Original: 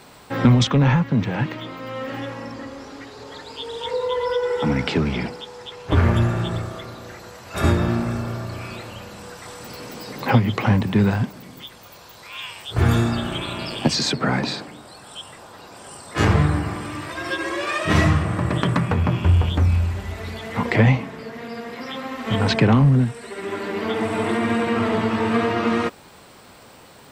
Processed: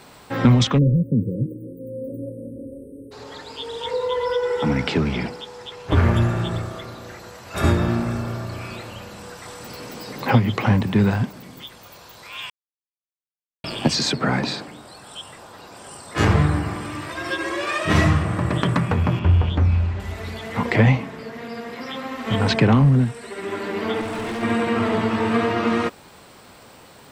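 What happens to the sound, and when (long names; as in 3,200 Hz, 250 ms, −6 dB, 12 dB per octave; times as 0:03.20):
0:00.78–0:03.12: time-frequency box erased 560–8,200 Hz
0:12.50–0:13.64: silence
0:19.19–0:20.00: high-frequency loss of the air 130 metres
0:24.01–0:24.43: hard clipping −25.5 dBFS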